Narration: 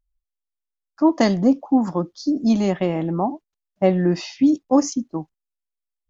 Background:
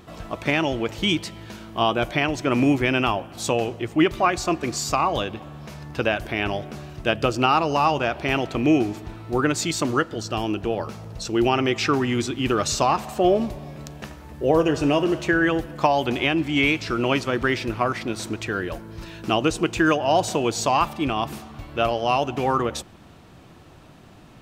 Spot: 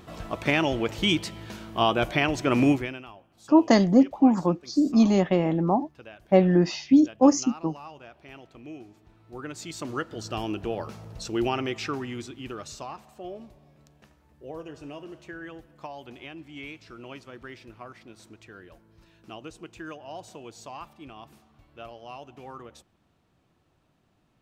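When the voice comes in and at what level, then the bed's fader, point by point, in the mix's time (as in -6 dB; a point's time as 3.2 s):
2.50 s, -1.0 dB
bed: 2.71 s -1.5 dB
3.05 s -23.5 dB
8.91 s -23.5 dB
10.28 s -5.5 dB
11.36 s -5.5 dB
13.12 s -20.5 dB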